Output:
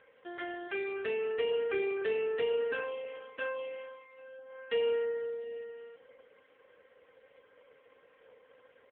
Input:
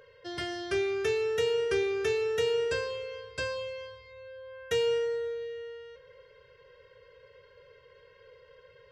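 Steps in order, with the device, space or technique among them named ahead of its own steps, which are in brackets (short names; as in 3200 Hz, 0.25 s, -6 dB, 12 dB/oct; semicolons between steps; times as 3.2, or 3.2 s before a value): 0.67–1.63 HPF 570 Hz -> 140 Hz 6 dB/oct; satellite phone (BPF 390–3200 Hz; echo 0.504 s -23.5 dB; AMR-NB 5.9 kbps 8000 Hz)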